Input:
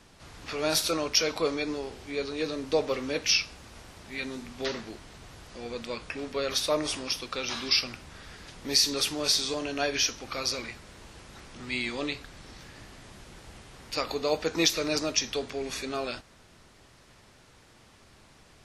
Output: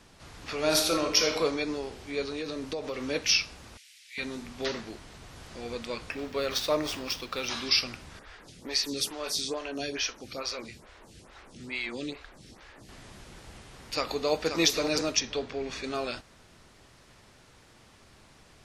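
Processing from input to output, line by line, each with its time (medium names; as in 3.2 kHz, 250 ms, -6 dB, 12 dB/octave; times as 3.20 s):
0.56–1.39 s: reverb throw, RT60 0.88 s, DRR 3.5 dB
2.28–3.03 s: compression, threshold -30 dBFS
3.77–4.18 s: steep high-pass 2.1 kHz
4.99–5.39 s: echo throw 360 ms, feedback 80%, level -3.5 dB
6.11–7.48 s: median filter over 5 samples
8.19–12.89 s: lamp-driven phase shifter 2.3 Hz
13.53–14.55 s: echo throw 530 ms, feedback 15%, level -7.5 dB
15.20–15.84 s: distance through air 99 m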